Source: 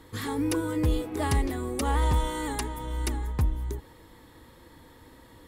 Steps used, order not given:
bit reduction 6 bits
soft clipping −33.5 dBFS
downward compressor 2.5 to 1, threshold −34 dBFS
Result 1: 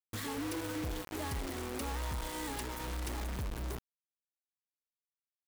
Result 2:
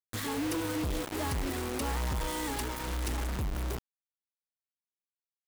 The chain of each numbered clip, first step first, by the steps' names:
downward compressor, then bit reduction, then soft clipping
soft clipping, then downward compressor, then bit reduction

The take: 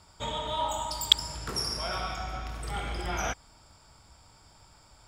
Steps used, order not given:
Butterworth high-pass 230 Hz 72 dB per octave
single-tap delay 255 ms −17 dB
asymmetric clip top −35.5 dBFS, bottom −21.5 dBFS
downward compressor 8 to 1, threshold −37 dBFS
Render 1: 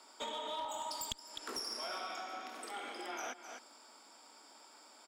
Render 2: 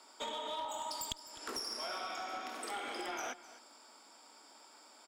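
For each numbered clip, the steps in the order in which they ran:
single-tap delay, then downward compressor, then Butterworth high-pass, then asymmetric clip
Butterworth high-pass, then downward compressor, then asymmetric clip, then single-tap delay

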